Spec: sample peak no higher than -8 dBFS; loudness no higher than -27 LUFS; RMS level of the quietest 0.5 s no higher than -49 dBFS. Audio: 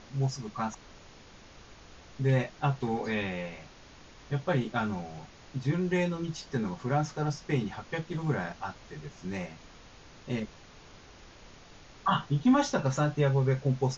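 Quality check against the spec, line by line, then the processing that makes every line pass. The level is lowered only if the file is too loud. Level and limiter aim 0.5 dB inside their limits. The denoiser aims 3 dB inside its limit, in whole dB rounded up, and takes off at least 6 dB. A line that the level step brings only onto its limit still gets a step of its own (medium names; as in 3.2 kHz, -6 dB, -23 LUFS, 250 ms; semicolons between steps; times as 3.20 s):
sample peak -14.5 dBFS: pass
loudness -31.0 LUFS: pass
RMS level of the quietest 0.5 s -52 dBFS: pass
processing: none needed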